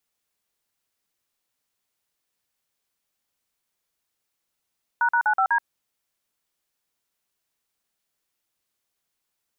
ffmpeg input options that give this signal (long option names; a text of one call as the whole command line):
ffmpeg -f lavfi -i "aevalsrc='0.1*clip(min(mod(t,0.124),0.078-mod(t,0.124))/0.002,0,1)*(eq(floor(t/0.124),0)*(sin(2*PI*941*mod(t,0.124))+sin(2*PI*1477*mod(t,0.124)))+eq(floor(t/0.124),1)*(sin(2*PI*941*mod(t,0.124))+sin(2*PI*1477*mod(t,0.124)))+eq(floor(t/0.124),2)*(sin(2*PI*852*mod(t,0.124))+sin(2*PI*1477*mod(t,0.124)))+eq(floor(t/0.124),3)*(sin(2*PI*770*mod(t,0.124))+sin(2*PI*1336*mod(t,0.124)))+eq(floor(t/0.124),4)*(sin(2*PI*941*mod(t,0.124))+sin(2*PI*1633*mod(t,0.124))))':duration=0.62:sample_rate=44100" out.wav